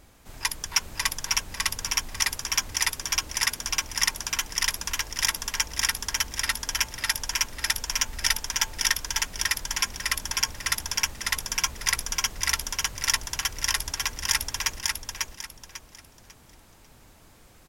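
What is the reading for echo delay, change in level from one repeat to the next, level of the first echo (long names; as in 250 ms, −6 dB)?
546 ms, −11.0 dB, −3.0 dB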